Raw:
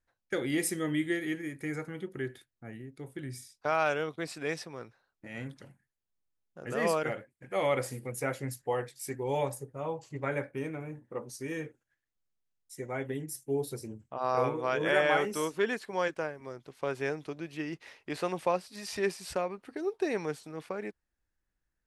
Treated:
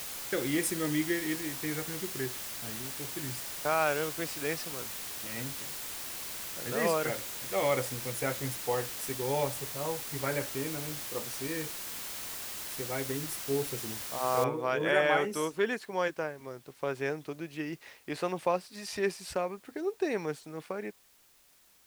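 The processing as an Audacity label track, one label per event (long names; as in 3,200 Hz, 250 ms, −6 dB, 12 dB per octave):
14.440000	14.440000	noise floor change −40 dB −63 dB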